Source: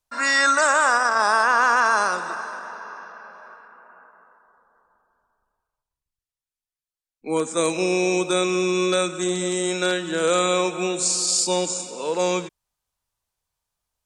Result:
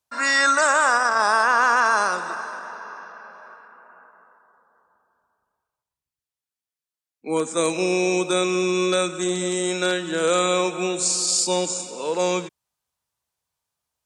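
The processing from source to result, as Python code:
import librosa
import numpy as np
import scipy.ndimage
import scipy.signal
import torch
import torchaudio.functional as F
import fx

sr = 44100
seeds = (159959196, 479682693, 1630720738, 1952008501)

y = scipy.signal.sosfilt(scipy.signal.butter(2, 86.0, 'highpass', fs=sr, output='sos'), x)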